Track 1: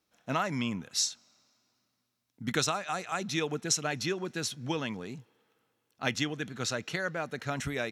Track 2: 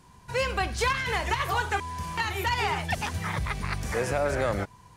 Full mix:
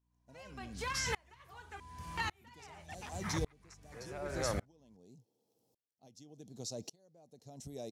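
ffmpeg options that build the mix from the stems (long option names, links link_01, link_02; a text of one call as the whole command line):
ffmpeg -i stem1.wav -i stem2.wav -filter_complex "[0:a]firequalizer=gain_entry='entry(740,0);entry(1400,-29);entry(4800,3)':delay=0.05:min_phase=1,acompressor=threshold=-35dB:ratio=6,volume=2dB[link_01];[1:a]aeval=exprs='val(0)+0.00794*(sin(2*PI*60*n/s)+sin(2*PI*2*60*n/s)/2+sin(2*PI*3*60*n/s)/3+sin(2*PI*4*60*n/s)/4+sin(2*PI*5*60*n/s)/5)':channel_layout=same,volume=-5.5dB[link_02];[link_01][link_02]amix=inputs=2:normalize=0,aeval=exprs='val(0)*pow(10,-33*if(lt(mod(-0.87*n/s,1),2*abs(-0.87)/1000),1-mod(-0.87*n/s,1)/(2*abs(-0.87)/1000),(mod(-0.87*n/s,1)-2*abs(-0.87)/1000)/(1-2*abs(-0.87)/1000))/20)':channel_layout=same" out.wav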